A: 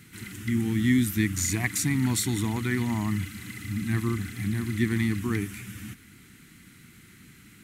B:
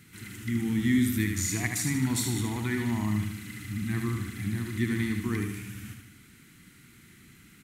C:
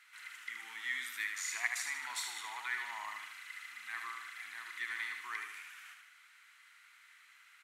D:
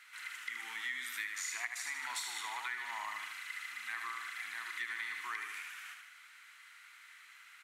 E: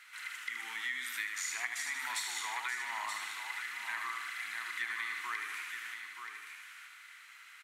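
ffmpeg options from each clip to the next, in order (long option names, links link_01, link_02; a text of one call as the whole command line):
ffmpeg -i in.wav -af "aecho=1:1:76|152|228|304|380|456:0.531|0.255|0.122|0.0587|0.0282|0.0135,volume=-3.5dB" out.wav
ffmpeg -i in.wav -af "highpass=frequency=960:width=0.5412,highpass=frequency=960:width=1.3066,aemphasis=mode=reproduction:type=75kf,volume=1.5dB" out.wav
ffmpeg -i in.wav -filter_complex "[0:a]acrossover=split=210[link_01][link_02];[link_02]acompressor=threshold=-41dB:ratio=5[link_03];[link_01][link_03]amix=inputs=2:normalize=0,volume=4.5dB" out.wav
ffmpeg -i in.wav -af "aecho=1:1:928:0.422,volume=2dB" out.wav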